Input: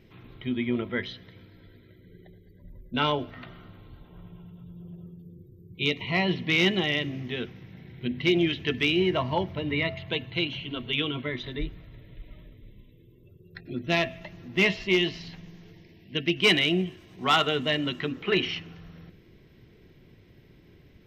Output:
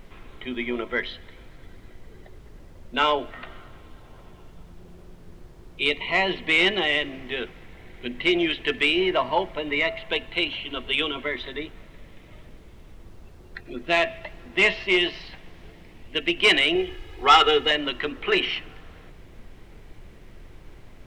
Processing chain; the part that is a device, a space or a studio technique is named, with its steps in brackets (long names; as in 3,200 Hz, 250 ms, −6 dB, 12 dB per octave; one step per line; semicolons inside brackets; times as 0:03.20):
aircraft cabin announcement (band-pass filter 440–3,400 Hz; soft clipping −14.5 dBFS, distortion −21 dB; brown noise bed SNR 16 dB)
0:16.75–0:17.71: comb filter 2.4 ms, depth 98%
level +6.5 dB